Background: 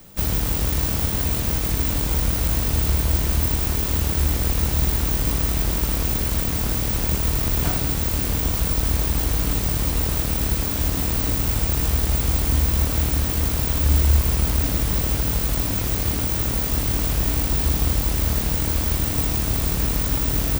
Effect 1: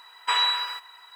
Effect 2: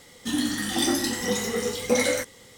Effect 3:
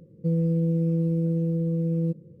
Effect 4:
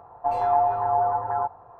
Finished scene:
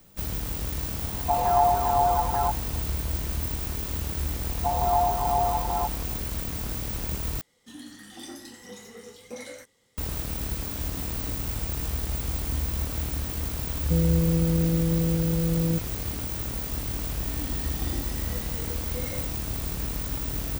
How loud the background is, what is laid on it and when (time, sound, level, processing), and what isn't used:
background -9 dB
1.04 s: add 4
4.40 s: add 4 -2.5 dB + steep low-pass 1.3 kHz
7.41 s: replace with 2 -17.5 dB
13.66 s: add 3
17.05 s: add 2 -15 dB + harmonic-percussive separation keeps harmonic
not used: 1

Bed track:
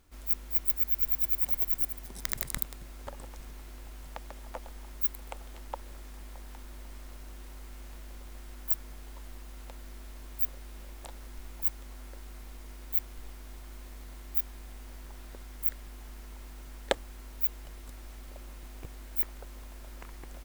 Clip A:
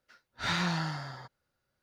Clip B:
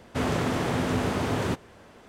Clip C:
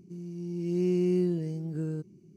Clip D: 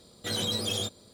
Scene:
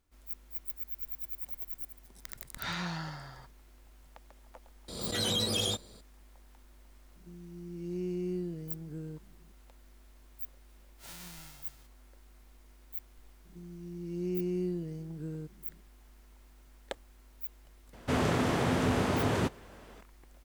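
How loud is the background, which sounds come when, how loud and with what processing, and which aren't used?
bed track -12 dB
2.19 s: add A -6 dB
4.88 s: add D -0.5 dB + swell ahead of each attack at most 45 dB/s
7.16 s: add C -9 dB
10.60 s: add A -17.5 dB + formants flattened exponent 0.1
13.45 s: add C -7 dB
17.93 s: add B -2 dB

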